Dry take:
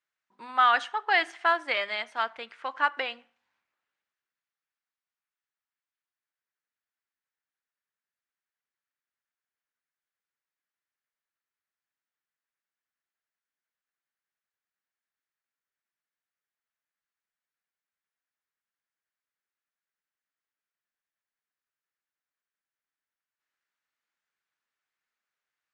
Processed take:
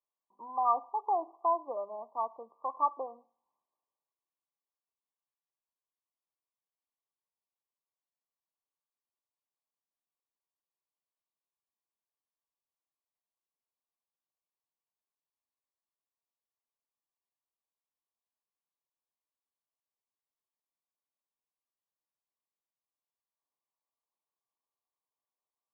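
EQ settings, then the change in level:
high-pass filter 470 Hz 6 dB per octave
linear-phase brick-wall low-pass 1,200 Hz
0.0 dB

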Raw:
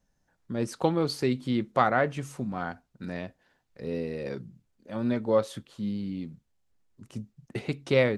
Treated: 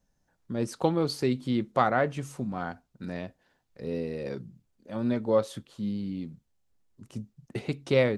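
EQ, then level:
parametric band 1,900 Hz −2.5 dB 1.4 octaves
0.0 dB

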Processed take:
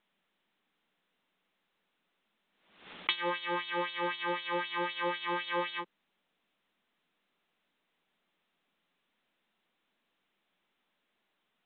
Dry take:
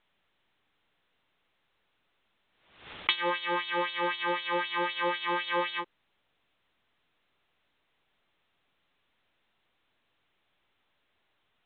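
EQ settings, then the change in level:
low shelf with overshoot 150 Hz −7 dB, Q 3
−4.0 dB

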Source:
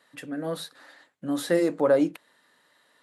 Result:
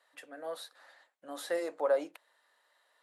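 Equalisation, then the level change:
high-pass with resonance 640 Hz, resonance Q 1.5
−8.5 dB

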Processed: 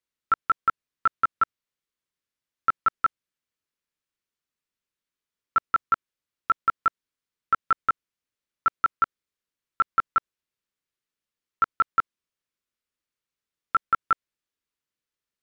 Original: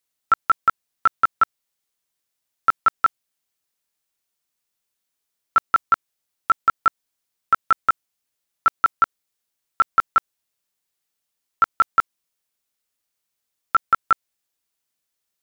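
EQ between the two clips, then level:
low-pass filter 2,300 Hz 6 dB per octave
parametric band 750 Hz −9 dB 0.58 octaves
−2.5 dB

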